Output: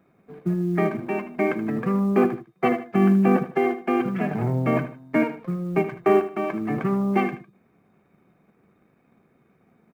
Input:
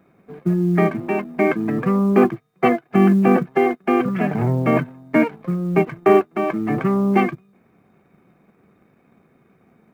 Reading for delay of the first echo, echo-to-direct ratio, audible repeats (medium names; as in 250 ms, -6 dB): 77 ms, -11.5 dB, 2